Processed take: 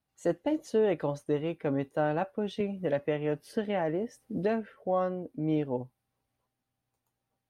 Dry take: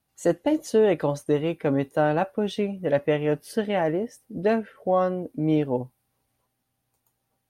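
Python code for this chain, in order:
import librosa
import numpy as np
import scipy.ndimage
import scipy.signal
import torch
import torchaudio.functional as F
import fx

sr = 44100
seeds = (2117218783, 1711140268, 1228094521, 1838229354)

y = fx.high_shelf(x, sr, hz=7300.0, db=-9.5)
y = fx.band_squash(y, sr, depth_pct=70, at=(2.6, 4.75))
y = y * librosa.db_to_amplitude(-6.5)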